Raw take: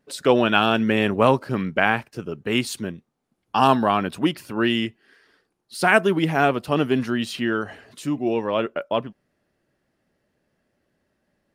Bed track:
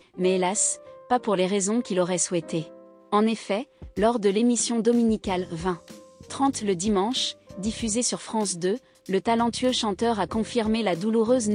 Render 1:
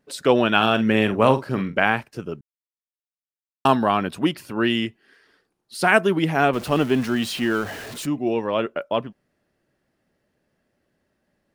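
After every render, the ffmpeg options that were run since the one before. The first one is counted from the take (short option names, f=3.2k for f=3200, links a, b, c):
-filter_complex "[0:a]asettb=1/sr,asplit=3[a][b][c];[a]atrim=end=0.564[d];[b]atrim=start=0.56:end=1.83,asetpts=PTS-STARTPTS,afade=t=in:d=0.004:c=qsin,afade=t=out:st=1.266:d=0.004:c=qsin,asplit=2[e][f];[f]adelay=46,volume=-11dB[g];[e][g]amix=inputs=2:normalize=0,atrim=end_sample=56007[h];[c]atrim=start=1.826[i];[d][h]acrossfade=d=0.004:c1=hsin:c2=qsin[j];[j][i]acrossfade=d=0.004:c1=qsin:c2=hsin,asettb=1/sr,asplit=3[k][l][m];[k]atrim=end=6.534[n];[l]atrim=start=6.53:end=8.06,asetpts=PTS-STARTPTS,afade=t=in:d=0.004:c=qsin,afade=t=out:st=1.526:d=0.004:c=qsin,aeval=exprs='val(0)+0.5*0.0266*sgn(val(0))':c=same[o];[m]atrim=start=8.056[p];[n][o]acrossfade=d=0.004:c1=hsin:c2=qsin[q];[q][p]acrossfade=d=0.004:c1=qsin:c2=hsin,asplit=3[r][s][t];[r]atrim=end=2.41,asetpts=PTS-STARTPTS,afade=t=out:st=2.406:d=0.004:c=hsin[u];[s]atrim=start=2.41:end=3.65,asetpts=PTS-STARTPTS,volume=0[v];[t]atrim=start=3.65,asetpts=PTS-STARTPTS,afade=t=in:d=0.004:c=hsin[w];[u][v][w]concat=n=3:v=0:a=1"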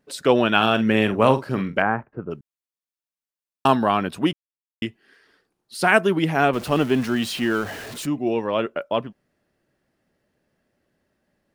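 -filter_complex "[0:a]asettb=1/sr,asplit=3[a][b][c];[a]atrim=end=1.824[d];[b]atrim=start=1.82:end=2.31,asetpts=PTS-STARTPTS,afade=t=in:d=0.004:c=qsin,afade=t=out:st=0.486:d=0.004:c=qsin,lowpass=f=1.5k:w=0.5412,lowpass=f=1.5k:w=1.3066[e];[c]atrim=start=2.306[f];[d][e]acrossfade=d=0.004:c1=hsin:c2=qsin[g];[g][f]acrossfade=d=0.004:c1=qsin:c2=hsin,asplit=3[h][i][j];[h]atrim=end=4.33,asetpts=PTS-STARTPTS,afade=t=out:st=4.326:d=0.004:c=hsin[k];[i]atrim=start=4.33:end=4.82,asetpts=PTS-STARTPTS,volume=0[l];[j]atrim=start=4.82,asetpts=PTS-STARTPTS,afade=t=in:d=0.004:c=hsin[m];[k][l][m]concat=n=3:v=0:a=1"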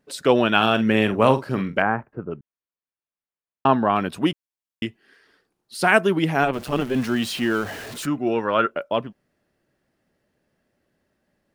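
-filter_complex "[0:a]asettb=1/sr,asplit=3[a][b][c];[a]atrim=end=2.234[d];[b]atrim=start=2.23:end=3.96,asetpts=PTS-STARTPTS,afade=t=in:d=0.004:c=qsin,afade=t=out:st=1.726:d=0.004:c=qsin,lowpass=2.3k[e];[c]atrim=start=3.956[f];[d][e]acrossfade=d=0.004:c1=hsin:c2=qsin[g];[g][f]acrossfade=d=0.004:c1=qsin:c2=hsin,asplit=3[h][i][j];[h]afade=t=out:st=6.42:d=0.02[k];[i]tremolo=f=130:d=0.71,afade=t=in:st=6.42:d=0.02,afade=t=out:st=6.94:d=0.02[l];[j]afade=t=in:st=6.94:d=0.02[m];[k][l][m]amix=inputs=3:normalize=0,asettb=1/sr,asplit=3[n][o][p];[n]atrim=end=8.024[q];[o]atrim=start=8.02:end=8.71,asetpts=PTS-STARTPTS,afade=t=in:d=0.004:c=qsin,afade=t=out:st=0.686:d=0.004:c=qsin,equalizer=f=1.4k:t=o:w=0.48:g=14.5[r];[p]atrim=start=8.706[s];[q][r]acrossfade=d=0.004:c1=hsin:c2=qsin[t];[t][s]acrossfade=d=0.004:c1=qsin:c2=hsin"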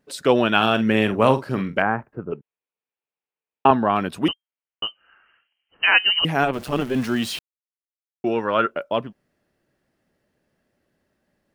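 -filter_complex "[0:a]asettb=1/sr,asplit=3[a][b][c];[a]atrim=end=2.324[d];[b]atrim=start=2.32:end=3.71,asetpts=PTS-STARTPTS,afade=t=in:d=0.004:c=qsin,afade=t=out:st=1.386:d=0.004:c=qsin,highpass=130,equalizer=f=450:t=q:w=4:g=10,equalizer=f=850:t=q:w=4:g=6,equalizer=f=2.5k:t=q:w=4:g=7,lowpass=f=3.7k:w=0.5412,lowpass=f=3.7k:w=1.3066[e];[c]atrim=start=3.706[f];[d][e]acrossfade=d=0.004:c1=hsin:c2=qsin[g];[g][f]acrossfade=d=0.004:c1=qsin:c2=hsin,asettb=1/sr,asplit=3[h][i][j];[h]atrim=end=4.284[k];[i]atrim=start=4.28:end=6.25,asetpts=PTS-STARTPTS,afade=t=in:d=0.004:c=qsin,afade=t=out:st=1.966:d=0.004:c=qsin,lowpass=f=2.7k:t=q:w=0.5098,lowpass=f=2.7k:t=q:w=0.6013,lowpass=f=2.7k:t=q:w=0.9,lowpass=f=2.7k:t=q:w=2.563,afreqshift=-3200[l];[j]atrim=start=6.246[m];[k][l]acrossfade=d=0.004:c1=hsin:c2=qsin[n];[n][m]acrossfade=d=0.004:c1=qsin:c2=hsin,asplit=3[o][p][q];[o]atrim=end=7.39,asetpts=PTS-STARTPTS,afade=t=out:st=7.386:d=0.004:c=hsin[r];[p]atrim=start=7.39:end=8.24,asetpts=PTS-STARTPTS,volume=0[s];[q]atrim=start=8.24,asetpts=PTS-STARTPTS,afade=t=in:d=0.004:c=hsin[t];[r][s][t]concat=n=3:v=0:a=1"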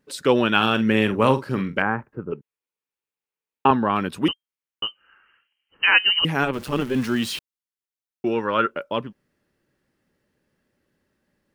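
-af "equalizer=f=680:t=o:w=0.28:g=-10"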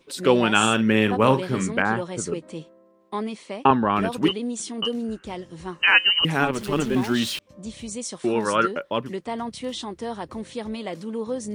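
-filter_complex "[1:a]volume=-7.5dB[a];[0:a][a]amix=inputs=2:normalize=0"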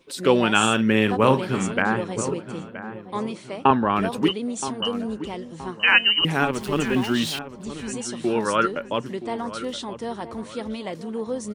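-filter_complex "[0:a]asplit=2[a][b];[b]adelay=972,lowpass=f=1.7k:p=1,volume=-12.5dB,asplit=2[c][d];[d]adelay=972,lowpass=f=1.7k:p=1,volume=0.41,asplit=2[e][f];[f]adelay=972,lowpass=f=1.7k:p=1,volume=0.41,asplit=2[g][h];[h]adelay=972,lowpass=f=1.7k:p=1,volume=0.41[i];[a][c][e][g][i]amix=inputs=5:normalize=0"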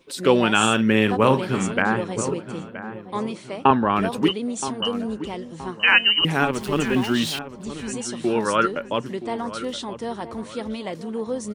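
-af "volume=1dB,alimiter=limit=-3dB:level=0:latency=1"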